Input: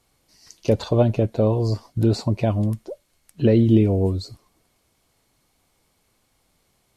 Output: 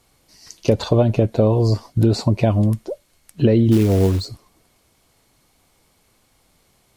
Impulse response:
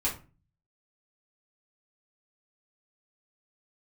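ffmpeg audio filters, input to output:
-filter_complex "[0:a]acompressor=threshold=-17dB:ratio=6,asplit=3[a][b][c];[a]afade=t=out:st=3.71:d=0.02[d];[b]acrusher=bits=5:mode=log:mix=0:aa=0.000001,afade=t=in:st=3.71:d=0.02,afade=t=out:st=4.25:d=0.02[e];[c]afade=t=in:st=4.25:d=0.02[f];[d][e][f]amix=inputs=3:normalize=0,volume=6dB"

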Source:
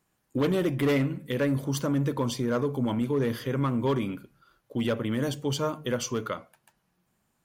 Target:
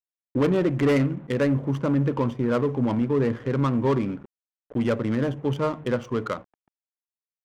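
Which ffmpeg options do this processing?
-af "acrusher=bits=7:mix=0:aa=0.000001,equalizer=f=4.3k:w=3:g=-13.5,adynamicsmooth=sensitivity=5:basefreq=760,volume=4dB"

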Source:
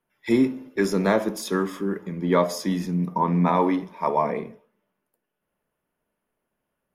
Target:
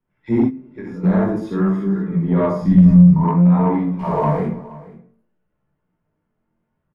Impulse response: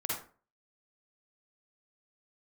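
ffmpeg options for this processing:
-filter_complex "[0:a]asettb=1/sr,asplit=3[a][b][c];[a]atrim=end=3.994[d];[b]atrim=start=3.99:end=4.41,asetpts=PTS-STARTPTS,afade=t=in:d=0.004:c=qsin,afade=t=out:st=0.416:d=0.004:c=qsin,aeval=exprs='val(0)+0.5*0.0376*sgn(val(0))':c=same[e];[c]atrim=start=4.406[f];[d][e]acrossfade=d=0.004:c1=hsin:c2=qsin[g];[g][f]acrossfade=d=0.004:c1=qsin:c2=hsin,bass=f=250:g=15,treble=f=4k:g=-15[h];[1:a]atrim=start_sample=2205[i];[h][i]afir=irnorm=-1:irlink=0,asplit=3[j][k][l];[j]afade=t=out:st=0.47:d=0.02[m];[k]acompressor=threshold=-27dB:ratio=6,afade=t=in:st=0.47:d=0.02,afade=t=out:st=1.03:d=0.02[n];[l]afade=t=in:st=1.03:d=0.02[o];[m][n][o]amix=inputs=3:normalize=0,flanger=delay=15:depth=7.4:speed=0.53,acrossover=split=1800|4900[p][q][r];[p]acompressor=threshold=-9dB:ratio=4[s];[q]acompressor=threshold=-49dB:ratio=4[t];[r]acompressor=threshold=-56dB:ratio=4[u];[s][t][u]amix=inputs=3:normalize=0,asoftclip=type=tanh:threshold=-7.5dB,asplit=3[v][w][x];[v]afade=t=out:st=2.61:d=0.02[y];[w]asubboost=boost=11.5:cutoff=130,afade=t=in:st=2.61:d=0.02,afade=t=out:st=3.23:d=0.02[z];[x]afade=t=in:st=3.23:d=0.02[aa];[y][z][aa]amix=inputs=3:normalize=0,lowpass=12k,aecho=1:1:475:0.106"

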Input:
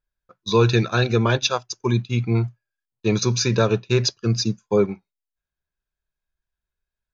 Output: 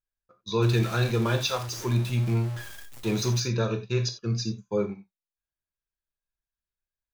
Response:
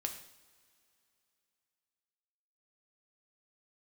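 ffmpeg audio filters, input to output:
-filter_complex "[0:a]asettb=1/sr,asplit=3[a][b][c];[a]atrim=end=0.624[d];[b]atrim=start=0.62:end=3.4,asetpts=PTS-STARTPTS,afade=t=in:d=0.004:c=qsin,afade=t=out:st=2.776:d=0.004:c=qsin,aeval=exprs='val(0)+0.5*0.0668*sgn(val(0))':c=same[e];[c]atrim=start=3.396[f];[d][e]acrossfade=d=0.004:c1=hsin:c2=qsin[g];[g][f]acrossfade=d=0.004:c1=qsin:c2=hsin[h];[1:a]atrim=start_sample=2205,atrim=end_sample=4410[i];[h][i]afir=irnorm=-1:irlink=0,volume=-8.5dB"

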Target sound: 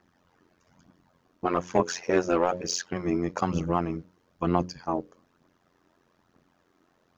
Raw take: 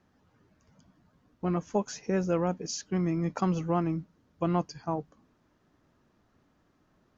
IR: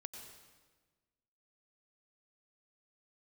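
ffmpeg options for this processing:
-filter_complex "[0:a]highpass=f=200:p=1,bandreject=f=60:t=h:w=6,bandreject=f=120:t=h:w=6,bandreject=f=180:t=h:w=6,bandreject=f=240:t=h:w=6,bandreject=f=300:t=h:w=6,bandreject=f=360:t=h:w=6,bandreject=f=420:t=h:w=6,bandreject=f=480:t=h:w=6,bandreject=f=540:t=h:w=6,asettb=1/sr,asplit=3[a][b][c];[a]atrim=end=1.454[d];[b]atrim=start=1.45:end=2.93,asetpts=PTS-STARTPTS,afade=t=in:d=0.004:c=qsin,afade=t=out:st=1.476:d=0.004:c=qsin,asplit=2[e][f];[f]highpass=f=720:p=1,volume=14dB,asoftclip=type=tanh:threshold=-15dB[g];[e][g]amix=inputs=2:normalize=0,lowpass=f=3k:p=1,volume=-6dB[h];[c]atrim=start=2.926[i];[d][h]acrossfade=d=0.004:c1=hsin:c2=qsin[j];[j][i]acrossfade=d=0.004:c1=qsin:c2=hsin,aphaser=in_gain=1:out_gain=1:delay=3.3:decay=0.41:speed=1.1:type=triangular,tremolo=f=88:d=0.889,volume=7dB"

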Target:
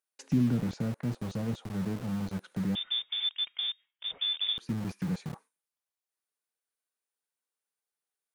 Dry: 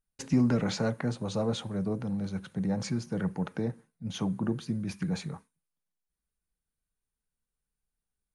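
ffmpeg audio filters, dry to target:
-filter_complex "[0:a]acrossover=split=340[a][b];[a]aeval=exprs='val(0)*gte(abs(val(0)),0.0133)':c=same[c];[b]acompressor=threshold=-48dB:ratio=6[d];[c][d]amix=inputs=2:normalize=0,asettb=1/sr,asplit=3[e][f][g];[e]atrim=end=2.754[h];[f]atrim=start=2.75:end=4.58,asetpts=PTS-STARTPTS,afade=t=in:d=0.004:c=qsin,afade=t=out:st=1.826:d=0.004:c=qsin,lowpass=f=3.1k:t=q:w=0.5098,lowpass=f=3.1k:t=q:w=0.6013,lowpass=f=3.1k:t=q:w=0.9,lowpass=f=3.1k:t=q:w=2.563,afreqshift=-3700[i];[g]atrim=start=4.576[j];[h][i]acrossfade=d=0.004:c1=hsin:c2=qsin[k];[k][j]acrossfade=d=0.004:c1=qsin:c2=hsin"

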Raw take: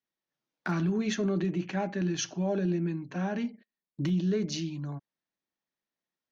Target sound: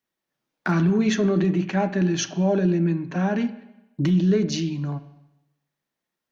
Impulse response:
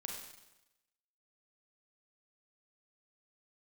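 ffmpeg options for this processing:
-filter_complex "[0:a]asplit=2[a][b];[1:a]atrim=start_sample=2205,lowpass=3.1k[c];[b][c]afir=irnorm=-1:irlink=0,volume=-6.5dB[d];[a][d]amix=inputs=2:normalize=0,volume=6dB"

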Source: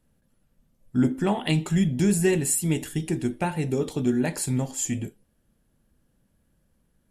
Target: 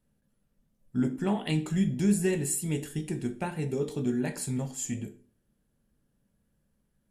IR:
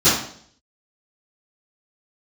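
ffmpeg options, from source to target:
-filter_complex "[0:a]asplit=2[a][b];[1:a]atrim=start_sample=2205,asetrate=61740,aresample=44100[c];[b][c]afir=irnorm=-1:irlink=0,volume=-28dB[d];[a][d]amix=inputs=2:normalize=0,volume=-7dB"

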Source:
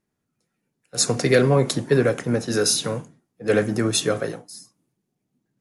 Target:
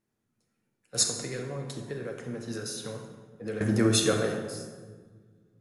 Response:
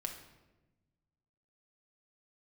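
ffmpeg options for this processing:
-filter_complex "[0:a]asettb=1/sr,asplit=3[a][b][c];[a]atrim=end=1.034[d];[b]atrim=start=1.03:end=3.61,asetpts=PTS-STARTPTS,afade=t=in:d=0.004:c=qsin,afade=t=out:st=2.576:d=0.004:c=qsin,acompressor=threshold=-34dB:ratio=4[e];[c]atrim=start=3.606[f];[d][e]acrossfade=d=0.004:c1=hsin:c2=qsin[g];[g][f]acrossfade=d=0.004:c1=qsin:c2=hsin[h];[1:a]atrim=start_sample=2205,asetrate=28224,aresample=44100[i];[h][i]afir=irnorm=-1:irlink=0,volume=-4dB"

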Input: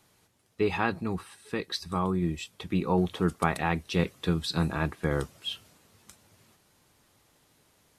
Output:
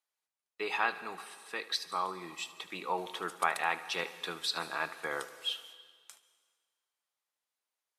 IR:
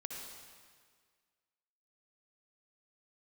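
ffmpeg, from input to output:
-filter_complex "[0:a]agate=range=-24dB:threshold=-55dB:ratio=16:detection=peak,highpass=780,asplit=2[a][b];[1:a]atrim=start_sample=2205,adelay=75[c];[b][c]afir=irnorm=-1:irlink=0,volume=-11.5dB[d];[a][d]amix=inputs=2:normalize=0"

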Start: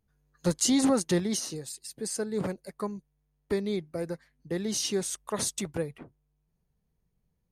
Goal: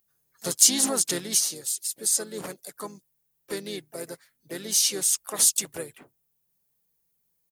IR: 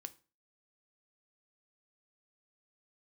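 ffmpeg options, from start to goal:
-filter_complex "[0:a]acontrast=70,aemphasis=mode=production:type=riaa,asplit=3[a][b][c];[b]asetrate=35002,aresample=44100,atempo=1.25992,volume=-9dB[d];[c]asetrate=55563,aresample=44100,atempo=0.793701,volume=-14dB[e];[a][d][e]amix=inputs=3:normalize=0,volume=-8dB"

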